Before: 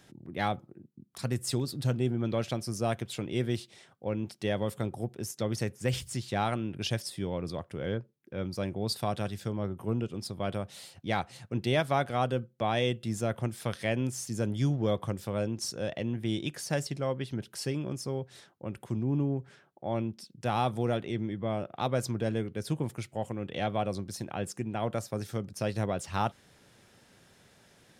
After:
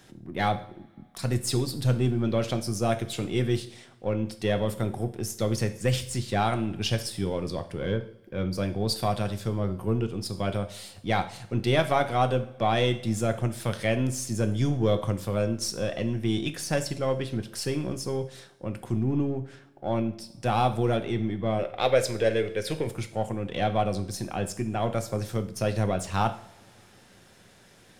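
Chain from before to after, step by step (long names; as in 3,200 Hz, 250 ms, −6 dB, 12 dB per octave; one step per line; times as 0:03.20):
gain on one half-wave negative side −3 dB
0:21.59–0:22.87: octave-band graphic EQ 125/250/500/1,000/2,000/4,000 Hz −6/−8/+9/−6/+9/+3 dB
coupled-rooms reverb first 0.52 s, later 2.3 s, from −22 dB, DRR 8 dB
level +5.5 dB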